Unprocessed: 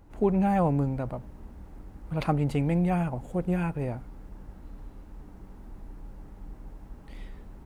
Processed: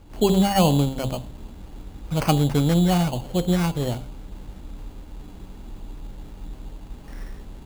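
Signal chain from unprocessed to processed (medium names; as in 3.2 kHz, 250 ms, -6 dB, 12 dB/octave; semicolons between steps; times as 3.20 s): de-hum 66.27 Hz, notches 17; sample-and-hold 12×; trim +6.5 dB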